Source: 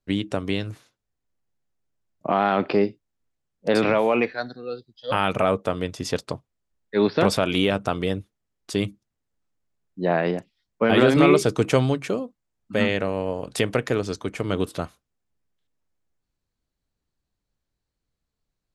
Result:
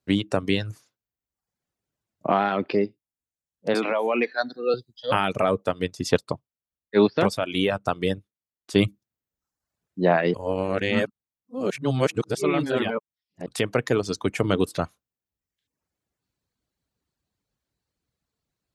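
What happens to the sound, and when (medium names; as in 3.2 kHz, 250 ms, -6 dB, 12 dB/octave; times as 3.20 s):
3.74–4.74 s: high-pass 200 Hz 24 dB/octave
5.64–8.76 s: upward expansion, over -36 dBFS
10.34–13.46 s: reverse
whole clip: reverb removal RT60 0.79 s; high-pass 70 Hz; gain riding 0.5 s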